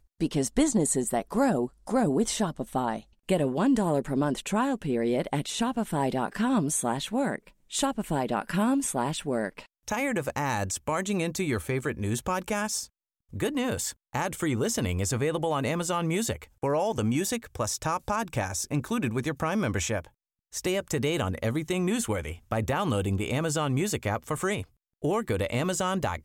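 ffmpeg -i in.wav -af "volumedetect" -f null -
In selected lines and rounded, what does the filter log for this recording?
mean_volume: -28.3 dB
max_volume: -11.6 dB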